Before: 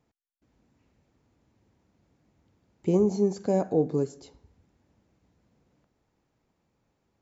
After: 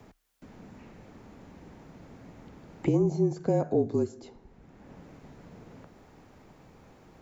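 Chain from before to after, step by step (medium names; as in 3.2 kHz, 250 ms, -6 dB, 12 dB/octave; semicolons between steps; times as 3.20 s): frequency shift -35 Hz; three bands compressed up and down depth 70%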